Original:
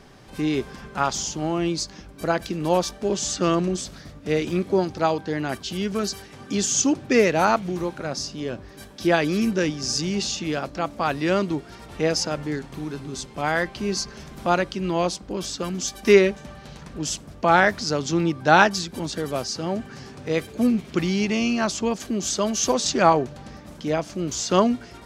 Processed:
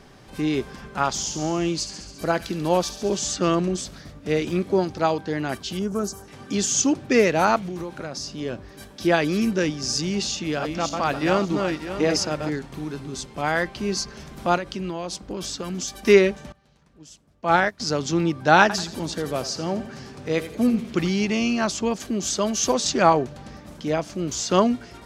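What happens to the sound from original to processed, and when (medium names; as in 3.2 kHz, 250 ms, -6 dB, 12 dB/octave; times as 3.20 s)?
1.11–3.21 s: feedback echo behind a high-pass 69 ms, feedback 72%, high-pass 2.8 kHz, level -9 dB
5.79–6.28 s: high-order bell 2.9 kHz -14.5 dB
7.60–8.33 s: compression, threshold -27 dBFS
10.30–12.50 s: backward echo that repeats 297 ms, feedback 43%, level -4 dB
14.56–16.02 s: compression, threshold -25 dBFS
16.52–17.80 s: upward expansion 2.5:1, over -27 dBFS
18.61–21.10 s: feedback delay 84 ms, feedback 39%, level -13.5 dB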